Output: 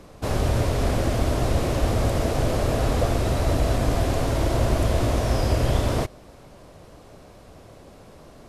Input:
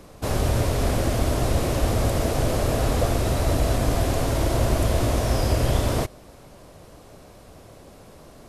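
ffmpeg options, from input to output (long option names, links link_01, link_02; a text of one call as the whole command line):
ffmpeg -i in.wav -af "highshelf=frequency=8500:gain=-8" out.wav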